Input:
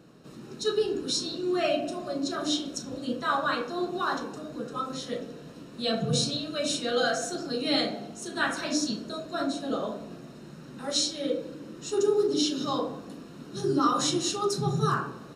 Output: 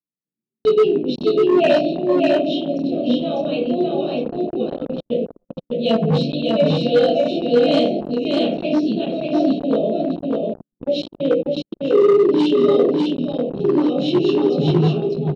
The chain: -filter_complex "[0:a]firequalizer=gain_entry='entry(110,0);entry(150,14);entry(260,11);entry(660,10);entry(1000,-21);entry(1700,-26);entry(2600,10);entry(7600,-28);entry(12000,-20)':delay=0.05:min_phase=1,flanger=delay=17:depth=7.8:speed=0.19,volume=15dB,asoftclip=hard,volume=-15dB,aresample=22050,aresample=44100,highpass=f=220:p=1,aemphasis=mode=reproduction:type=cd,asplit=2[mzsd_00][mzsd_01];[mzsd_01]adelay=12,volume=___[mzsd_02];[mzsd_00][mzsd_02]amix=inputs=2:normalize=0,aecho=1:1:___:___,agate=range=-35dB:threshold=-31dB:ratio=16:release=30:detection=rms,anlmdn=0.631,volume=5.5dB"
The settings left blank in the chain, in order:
-13.5dB, 598, 0.708